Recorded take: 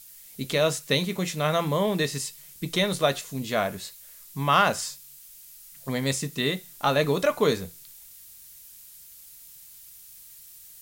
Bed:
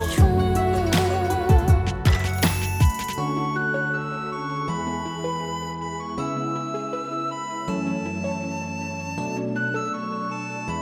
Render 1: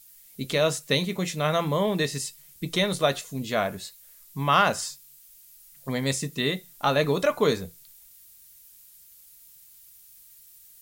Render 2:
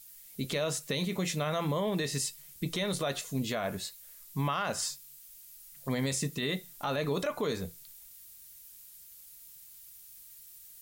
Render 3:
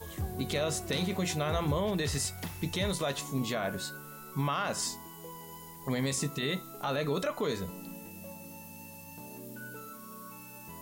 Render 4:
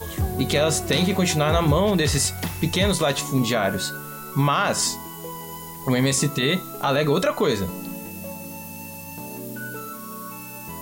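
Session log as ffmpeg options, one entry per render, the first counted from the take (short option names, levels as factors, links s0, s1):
-af "afftdn=nr=6:nf=-48"
-af "acompressor=threshold=0.0631:ratio=6,alimiter=limit=0.075:level=0:latency=1:release=22"
-filter_complex "[1:a]volume=0.106[s0];[0:a][s0]amix=inputs=2:normalize=0"
-af "volume=3.55"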